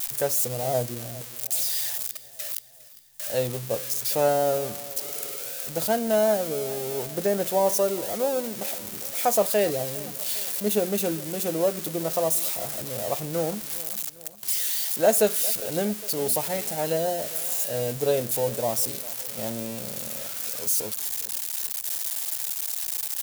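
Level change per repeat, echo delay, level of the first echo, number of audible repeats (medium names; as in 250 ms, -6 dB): -5.0 dB, 405 ms, -19.0 dB, 4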